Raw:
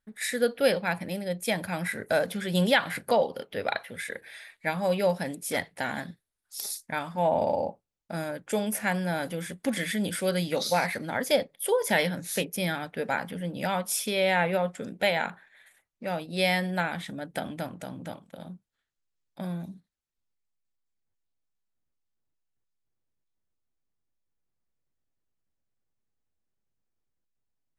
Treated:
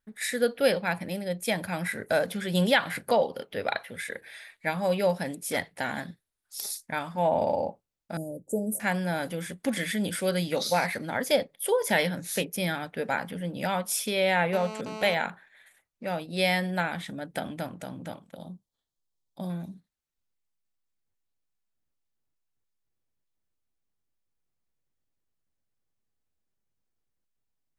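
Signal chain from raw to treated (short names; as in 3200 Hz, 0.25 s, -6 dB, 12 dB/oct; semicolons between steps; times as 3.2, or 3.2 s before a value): 8.17–8.8 inverse Chebyshev band-stop 1500–3200 Hz, stop band 70 dB; 14.53–15.14 GSM buzz -38 dBFS; 18.36–19.5 band shelf 1900 Hz -14 dB 1.2 oct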